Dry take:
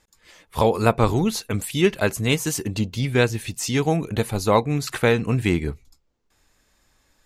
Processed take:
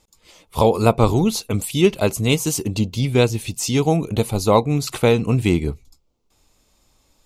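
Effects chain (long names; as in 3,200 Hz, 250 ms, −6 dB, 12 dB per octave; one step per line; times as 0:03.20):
parametric band 1,700 Hz −15 dB 0.46 octaves
level +3.5 dB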